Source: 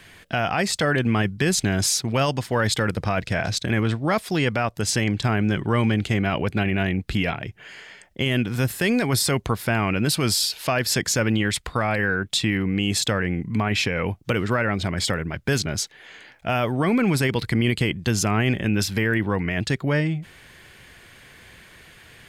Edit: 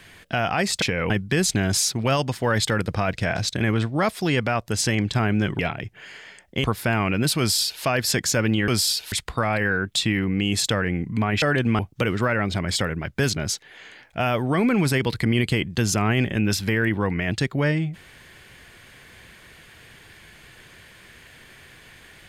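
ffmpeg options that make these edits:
-filter_complex "[0:a]asplit=9[a][b][c][d][e][f][g][h][i];[a]atrim=end=0.822[j];[b]atrim=start=13.798:end=14.082[k];[c]atrim=start=1.188:end=5.682[l];[d]atrim=start=7.218:end=8.272[m];[e]atrim=start=9.458:end=11.502[n];[f]atrim=start=10.208:end=10.652[o];[g]atrim=start=11.498:end=13.802[p];[h]atrim=start=0.818:end=1.192[q];[i]atrim=start=14.078[r];[j][k]acrossfade=d=0.004:c1=hsin:c2=hsin[s];[s][l]acrossfade=d=0.004:c1=hsin:c2=hsin[t];[t][m]acrossfade=d=0.004:c1=hsin:c2=hsin[u];[u][n]acrossfade=d=0.004:c1=hsin:c2=hsin[v];[v][o]acrossfade=d=0.004:c1=hsin:c2=hsin[w];[w][p]acrossfade=d=0.004:c1=hsin:c2=hsin[x];[x][q]acrossfade=d=0.004:c1=hsin:c2=hsin[y];[y][r]acrossfade=d=0.004:c1=hsin:c2=hsin"

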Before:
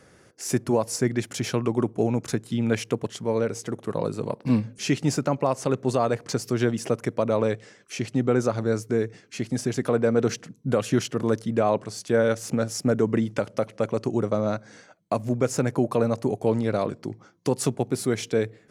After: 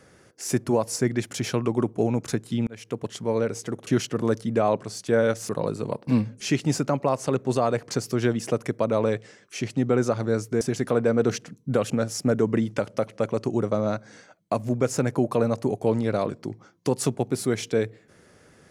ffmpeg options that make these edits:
-filter_complex "[0:a]asplit=6[a][b][c][d][e][f];[a]atrim=end=2.67,asetpts=PTS-STARTPTS,afade=t=out:st=2.666:d=0.004:c=hsin[g];[b]atrim=start=2.67:end=3.872,asetpts=PTS-STARTPTS,afade=t=in:d=0.46[h];[c]atrim=start=10.878:end=12.502[i];[d]atrim=start=3.868:end=8.992[j];[e]atrim=start=9.588:end=10.882[k];[f]atrim=start=12.498[l];[g][h]concat=n=2:v=0:a=1[m];[m][i]acrossfade=d=0.004:c1=hsin:c2=hsin[n];[n][j]acrossfade=d=0.004:c1=hsin:c2=hsin[o];[o][k]acrossfade=d=0.004:c1=hsin:c2=hsin[p];[p][l]acrossfade=d=0.004:c1=hsin:c2=hsin"

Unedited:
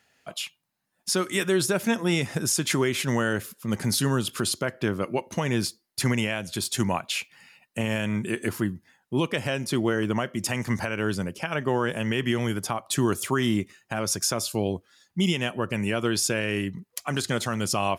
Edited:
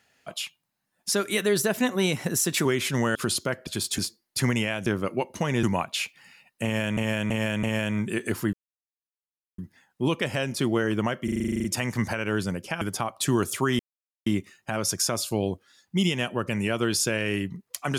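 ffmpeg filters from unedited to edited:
-filter_complex "[0:a]asplit=24[a][b][c][d][e][f][g][h][i][j][k][l][m][n][o][p][q][r][s][t][u][v][w][x];[a]atrim=end=1.124[y];[b]atrim=start=1.12:end=2.79,asetpts=PTS-STARTPTS,asetrate=48069,aresample=44100,atrim=end_sample=67566,asetpts=PTS-STARTPTS[z];[c]atrim=start=2.786:end=3.292[aa];[d]atrim=start=4.308:end=4.832[ab];[e]atrim=start=6.478:end=6.792[ac];[f]atrim=start=5.598:end=6.482[ad];[g]atrim=start=4.828:end=5.602[ae];[h]atrim=start=6.788:end=8.132[af];[i]atrim=start=7.798:end=8.132[ag];[j]atrim=start=7.798:end=8.132[ah];[k]atrim=start=7.798:end=8.7,asetpts=PTS-STARTPTS,afade=t=out:st=0.898:d=0.004:c=hsin,apad=pad_dur=1.05[ai];[l]atrim=start=8.7:end=10.402,asetpts=PTS-STARTPTS,afade=t=in:d=0.004:c=hsin[aj];[m]atrim=start=10.358:end=10.402[ak];[n]atrim=start=10.358:end=10.402[al];[o]atrim=start=10.358:end=10.402[am];[p]atrim=start=10.358:end=10.402[an];[q]atrim=start=10.358:end=10.402[ao];[r]atrim=start=10.358:end=10.402[ap];[s]atrim=start=10.358:end=10.402[aq];[t]atrim=start=10.358:end=10.402[ar];[u]atrim=start=10.358:end=10.402[as];[v]atrim=start=10.358:end=11.532[at];[w]atrim=start=12.508:end=13.49,asetpts=PTS-STARTPTS,afade=t=out:st=0.978:d=0.004:c=hsin,apad=pad_dur=0.47[au];[x]atrim=start=13.49,asetpts=PTS-STARTPTS,afade=t=in:d=0.004:c=hsin[av];[y][z]acrossfade=d=0.004:c1=hsin:c2=hsin[aw];[aw][aa]acrossfade=d=0.004:c1=hsin:c2=hsin[ax];[ax][ab]acrossfade=d=0.004:c1=hsin:c2=hsin[ay];[ay][ac]acrossfade=d=0.004:c1=hsin:c2=hsin[az];[az][ad]acrossfade=d=0.004:c1=hsin:c2=hsin[ba];[ba][ae]acrossfade=d=0.004:c1=hsin:c2=hsin[bb];[bb][af]acrossfade=d=0.004:c1=hsin:c2=hsin[bc];[bc][ag]acrossfade=d=0.004:c1=hsin:c2=hsin[bd];[bd][ah]acrossfade=d=0.004:c1=hsin:c2=hsin[be];[ai][aj]concat=n=2:v=0:a=1[bf];[be][bf]acrossfade=d=0.004:c1=hsin:c2=hsin[bg];[bg][ak]acrossfade=d=0.004:c1=hsin:c2=hsin[bh];[bh][al]acrossfade=d=0.004:c1=hsin:c2=hsin[bi];[bi][am]acrossfade=d=0.004:c1=hsin:c2=hsin[bj];[bj][an]acrossfade=d=0.004:c1=hsin:c2=hsin[bk];[bk][ao]acrossfade=d=0.004:c1=hsin:c2=hsin[bl];[bl][ap]acrossfade=d=0.004:c1=hsin:c2=hsin[bm];[bm][aq]acrossfade=d=0.004:c1=hsin:c2=hsin[bn];[bn][ar]acrossfade=d=0.004:c1=hsin:c2=hsin[bo];[bo][as]acrossfade=d=0.004:c1=hsin:c2=hsin[bp];[bp][at]acrossfade=d=0.004:c1=hsin:c2=hsin[bq];[au][av]concat=n=2:v=0:a=1[br];[bq][br]acrossfade=d=0.004:c1=hsin:c2=hsin"

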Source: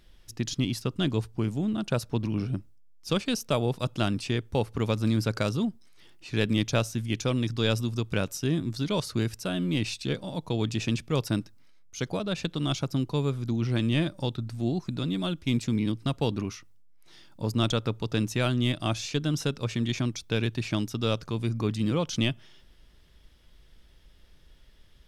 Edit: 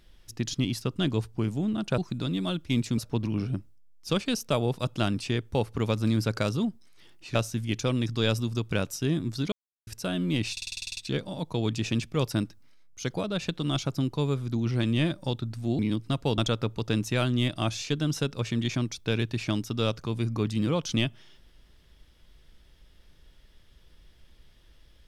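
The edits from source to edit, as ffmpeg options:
-filter_complex "[0:a]asplit=17[a][b][c][d][e][f][g][h][i][j][k][l][m][n][o][p][q];[a]atrim=end=1.982[r];[b]atrim=start=14.748:end=15.752[s];[c]atrim=start=1.978:end=6.352[t];[d]atrim=start=6.758:end=8.93,asetpts=PTS-STARTPTS,afade=t=out:st=2.168:d=0.004:c=hsin[u];[e]atrim=start=8.93:end=9.28,asetpts=PTS-STARTPTS,volume=0[v];[f]atrim=start=9.28:end=9.982,asetpts=PTS-STARTPTS,afade=t=in:d=0.004:c=hsin[w];[g]atrim=start=9.928:end=9.982[x];[h]atrim=start=9.928:end=9.982[y];[i]atrim=start=9.928:end=9.982[z];[j]atrim=start=9.928:end=9.982[aa];[k]atrim=start=9.928:end=9.982[ab];[l]atrim=start=9.928:end=9.982[ac];[m]atrim=start=9.928:end=9.982[ad];[n]atrim=start=9.928:end=9.982[ae];[o]atrim=start=9.928:end=14.752[af];[p]atrim=start=15.748:end=16.342[ag];[q]atrim=start=17.618[ah];[r][s]acrossfade=d=0.004:c1=hsin:c2=hsin[ai];[ai][t]acrossfade=d=0.004:c1=hsin:c2=hsin[aj];[u][v][w]concat=n=3:v=0:a=1[ak];[aj][ak]acrossfade=d=0.004:c1=hsin:c2=hsin[al];[al][x]acrossfade=d=0.004:c1=hsin:c2=hsin[am];[am][y]acrossfade=d=0.004:c1=hsin:c2=hsin[an];[an][z]acrossfade=d=0.004:c1=hsin:c2=hsin[ao];[ao][aa]acrossfade=d=0.004:c1=hsin:c2=hsin[ap];[ap][ab]acrossfade=d=0.004:c1=hsin:c2=hsin[aq];[aq][ac]acrossfade=d=0.004:c1=hsin:c2=hsin[ar];[ar][ad]acrossfade=d=0.004:c1=hsin:c2=hsin[as];[as][ae]acrossfade=d=0.004:c1=hsin:c2=hsin[at];[at][af]acrossfade=d=0.004:c1=hsin:c2=hsin[au];[au][ag]acrossfade=d=0.004:c1=hsin:c2=hsin[av];[av][ah]acrossfade=d=0.004:c1=hsin:c2=hsin"

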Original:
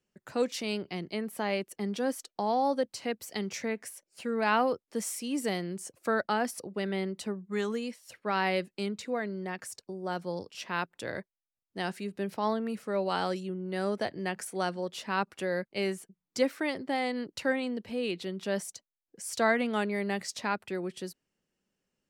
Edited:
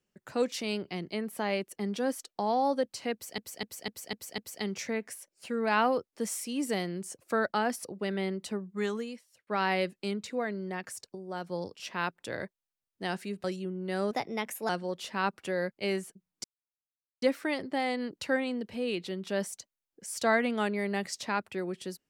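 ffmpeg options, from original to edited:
-filter_complex "[0:a]asplit=13[a][b][c][d][e][f][g][h][i][j][k][l][m];[a]atrim=end=3.382[n];[b]atrim=start=3.128:end=3.382[o];[c]atrim=start=3.128:end=3.382[p];[d]atrim=start=3.128:end=3.382[q];[e]atrim=start=3.128:end=3.382[r];[f]atrim=start=3.128:end=8.22,asetpts=PTS-STARTPTS,afade=t=out:st=4.462:d=0.63[s];[g]atrim=start=8.22:end=9.902,asetpts=PTS-STARTPTS,afade=t=in:d=0.004:c=hsin[t];[h]atrim=start=9.898:end=10.252,asetpts=PTS-STARTPTS,volume=-3.5dB[u];[i]atrim=start=10.248:end=12.192[v];[j]atrim=start=13.278:end=13.954[w];[k]atrim=start=13.95:end=14.63,asetpts=PTS-STARTPTS,asetrate=51597,aresample=44100[x];[l]atrim=start=14.626:end=16.38,asetpts=PTS-STARTPTS,afade=t=out:st=1.75:d=0.004:c=hsin,apad=pad_dur=0.78[y];[m]atrim=start=16.38,asetpts=PTS-STARTPTS,afade=t=in:d=0.004:c=hsin[z];[n][o]acrossfade=d=0.004:c1=hsin:c2=hsin[aa];[aa][p]acrossfade=d=0.004:c1=hsin:c2=hsin[ab];[ab][q]acrossfade=d=0.004:c1=hsin:c2=hsin[ac];[ac][r]acrossfade=d=0.004:c1=hsin:c2=hsin[ad];[s][t]concat=n=2:v=0:a=1[ae];[ad][ae]acrossfade=d=0.004:c1=hsin:c2=hsin[af];[af][u]acrossfade=d=0.004:c1=hsin:c2=hsin[ag];[ag][v]acrossfade=d=0.004:c1=hsin:c2=hsin[ah];[ah][w]acrossfade=d=0.004:c1=hsin:c2=hsin[ai];[ai][x]acrossfade=d=0.004:c1=hsin:c2=hsin[aj];[y][z]concat=n=2:v=0:a=1[ak];[aj][ak]acrossfade=d=0.004:c1=hsin:c2=hsin"

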